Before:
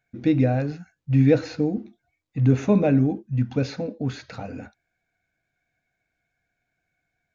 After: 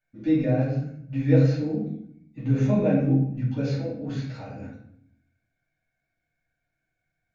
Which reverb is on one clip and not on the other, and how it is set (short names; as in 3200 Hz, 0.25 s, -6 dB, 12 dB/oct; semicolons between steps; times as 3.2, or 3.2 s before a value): shoebox room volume 130 m³, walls mixed, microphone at 2.5 m; gain -13.5 dB